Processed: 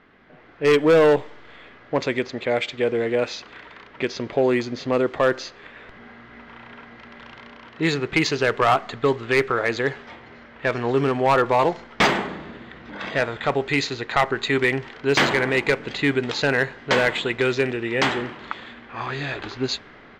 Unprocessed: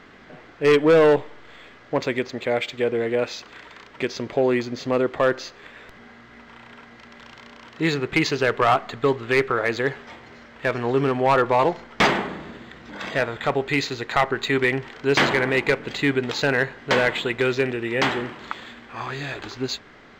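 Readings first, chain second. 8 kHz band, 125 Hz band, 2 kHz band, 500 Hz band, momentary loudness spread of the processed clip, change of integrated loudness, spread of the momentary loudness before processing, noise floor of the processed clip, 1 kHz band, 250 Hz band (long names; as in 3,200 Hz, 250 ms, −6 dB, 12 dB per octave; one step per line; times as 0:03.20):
+1.5 dB, 0.0 dB, +0.5 dB, 0.0 dB, 13 LU, +0.5 dB, 14 LU, −47 dBFS, 0.0 dB, 0.0 dB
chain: high-shelf EQ 6,800 Hz +5.5 dB
low-pass that shuts in the quiet parts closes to 2,900 Hz, open at −14.5 dBFS
automatic gain control gain up to 10 dB
level −7.5 dB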